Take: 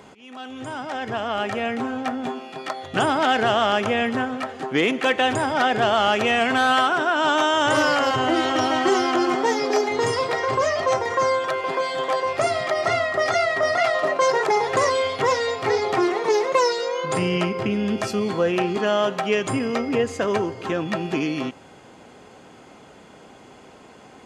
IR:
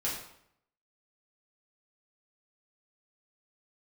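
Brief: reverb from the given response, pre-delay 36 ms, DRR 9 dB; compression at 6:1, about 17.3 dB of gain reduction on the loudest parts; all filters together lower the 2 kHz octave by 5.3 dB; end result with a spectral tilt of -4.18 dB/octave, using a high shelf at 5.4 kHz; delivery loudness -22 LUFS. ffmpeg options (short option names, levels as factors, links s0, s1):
-filter_complex "[0:a]equalizer=f=2000:t=o:g=-8,highshelf=f=5400:g=6.5,acompressor=threshold=0.0158:ratio=6,asplit=2[s0][s1];[1:a]atrim=start_sample=2205,adelay=36[s2];[s1][s2]afir=irnorm=-1:irlink=0,volume=0.2[s3];[s0][s3]amix=inputs=2:normalize=0,volume=5.96"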